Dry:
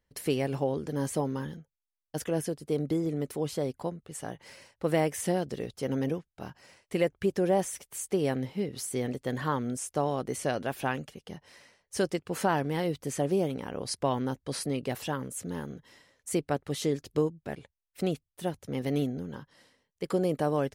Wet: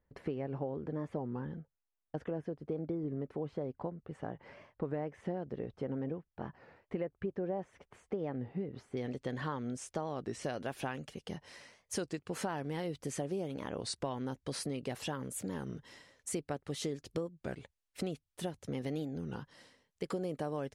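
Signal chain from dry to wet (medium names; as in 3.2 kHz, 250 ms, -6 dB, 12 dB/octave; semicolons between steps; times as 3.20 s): compression 4:1, threshold -37 dBFS, peak gain reduction 14 dB; low-pass 1.5 kHz 12 dB/octave, from 8.97 s 5.8 kHz, from 10.44 s 10 kHz; warped record 33 1/3 rpm, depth 160 cents; trim +1.5 dB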